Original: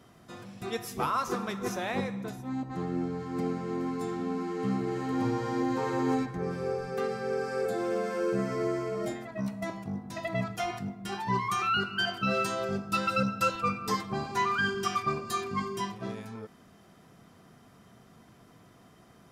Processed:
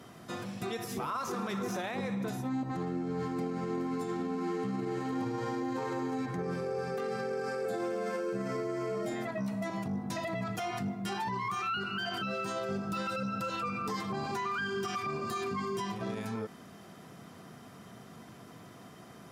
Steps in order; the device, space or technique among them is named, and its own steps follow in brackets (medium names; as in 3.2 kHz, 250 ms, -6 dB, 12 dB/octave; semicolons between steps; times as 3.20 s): podcast mastering chain (high-pass 100 Hz; de-esser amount 100%; compression 2.5:1, threshold -33 dBFS, peak gain reduction 7 dB; peak limiter -33 dBFS, peak gain reduction 10.5 dB; trim +6.5 dB; MP3 96 kbps 48 kHz)